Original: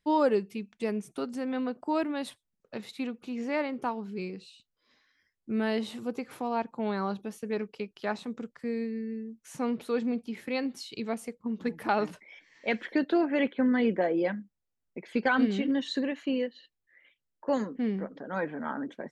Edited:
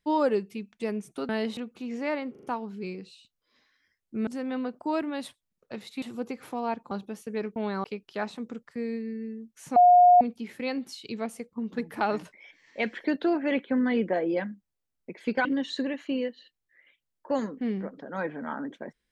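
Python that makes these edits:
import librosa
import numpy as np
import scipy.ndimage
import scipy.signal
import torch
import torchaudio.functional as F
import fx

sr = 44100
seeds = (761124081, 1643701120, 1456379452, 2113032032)

y = fx.edit(x, sr, fx.swap(start_s=1.29, length_s=1.75, other_s=5.62, other_length_s=0.28),
    fx.stutter(start_s=3.78, slice_s=0.04, count=4),
    fx.move(start_s=6.79, length_s=0.28, to_s=7.72),
    fx.bleep(start_s=9.64, length_s=0.45, hz=715.0, db=-12.5),
    fx.cut(start_s=15.33, length_s=0.3), tone=tone)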